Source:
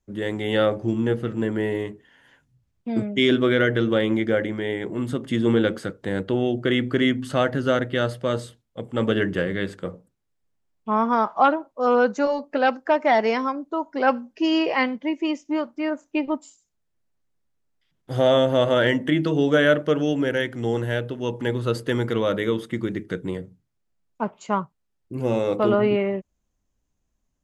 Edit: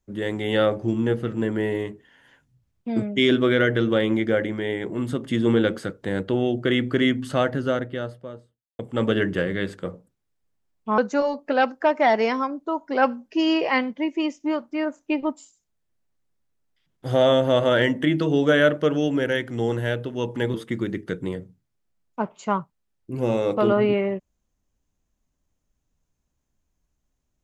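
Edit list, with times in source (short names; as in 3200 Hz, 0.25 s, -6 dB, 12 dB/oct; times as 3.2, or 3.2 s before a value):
7.21–8.79 studio fade out
10.98–12.03 cut
21.59–22.56 cut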